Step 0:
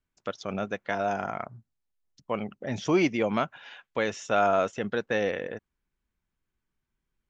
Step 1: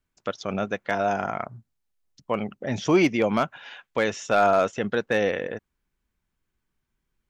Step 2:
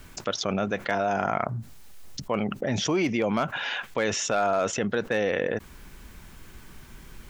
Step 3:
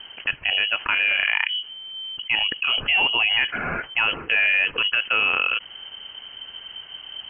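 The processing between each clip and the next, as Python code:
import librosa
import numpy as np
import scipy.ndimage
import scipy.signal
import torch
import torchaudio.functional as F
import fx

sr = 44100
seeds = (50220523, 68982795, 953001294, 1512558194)

y1 = np.clip(10.0 ** (15.0 / 20.0) * x, -1.0, 1.0) / 10.0 ** (15.0 / 20.0)
y1 = F.gain(torch.from_numpy(y1), 4.0).numpy()
y2 = fx.env_flatten(y1, sr, amount_pct=70)
y2 = F.gain(torch.from_numpy(y2), -7.5).numpy()
y3 = fx.freq_invert(y2, sr, carrier_hz=3100)
y3 = F.gain(torch.from_numpy(y3), 4.5).numpy()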